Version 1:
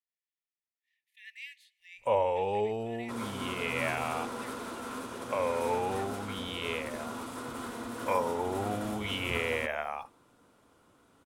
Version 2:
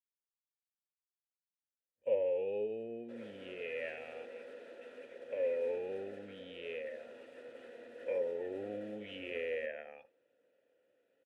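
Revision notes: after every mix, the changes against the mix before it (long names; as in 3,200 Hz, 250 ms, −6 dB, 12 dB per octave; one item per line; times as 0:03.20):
speech: entry +2.45 s
first sound: add low shelf with overshoot 420 Hz +10 dB, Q 1.5
master: add formant filter e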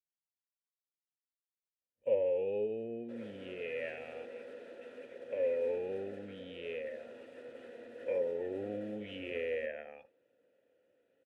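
master: add low-shelf EQ 290 Hz +7 dB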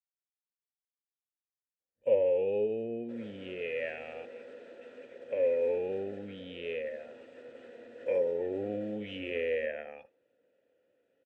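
first sound +4.5 dB
second sound: add linear-phase brick-wall low-pass 8,700 Hz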